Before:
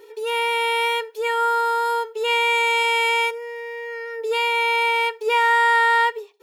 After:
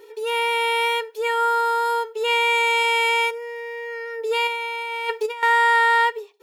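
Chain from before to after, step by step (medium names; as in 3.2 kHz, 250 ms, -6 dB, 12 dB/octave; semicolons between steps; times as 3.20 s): 4.47–5.43 s: compressor with a negative ratio -25 dBFS, ratio -0.5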